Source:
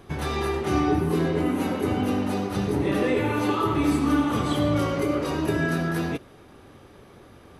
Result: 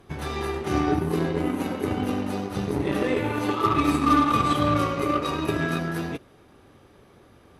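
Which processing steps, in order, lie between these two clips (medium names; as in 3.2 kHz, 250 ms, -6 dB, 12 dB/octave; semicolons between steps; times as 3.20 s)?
3.64–5.79 s: small resonant body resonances 1.2/2.5/3.8 kHz, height 14 dB, ringing for 45 ms; Chebyshev shaper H 7 -25 dB, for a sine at -8.5 dBFS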